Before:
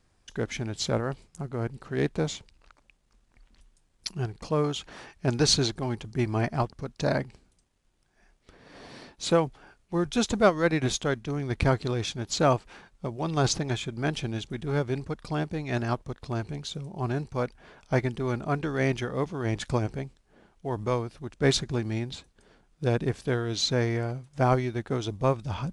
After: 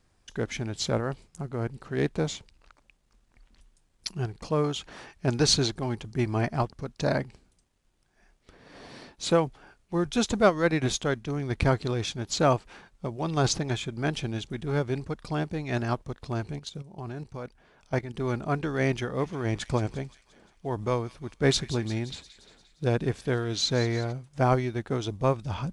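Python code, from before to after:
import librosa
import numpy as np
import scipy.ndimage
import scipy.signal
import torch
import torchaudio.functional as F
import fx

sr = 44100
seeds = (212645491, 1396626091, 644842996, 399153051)

y = fx.level_steps(x, sr, step_db=12, at=(16.59, 18.16))
y = fx.echo_wet_highpass(y, sr, ms=175, feedback_pct=59, hz=2400.0, wet_db=-12.5, at=(19.18, 24.11), fade=0.02)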